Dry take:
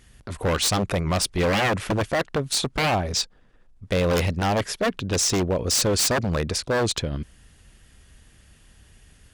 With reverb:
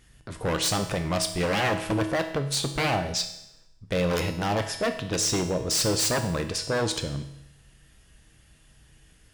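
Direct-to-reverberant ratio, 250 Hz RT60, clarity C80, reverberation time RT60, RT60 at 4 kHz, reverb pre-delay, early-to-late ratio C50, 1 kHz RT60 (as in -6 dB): 5.5 dB, 0.85 s, 12.0 dB, 0.85 s, 0.85 s, 6 ms, 9.5 dB, 0.85 s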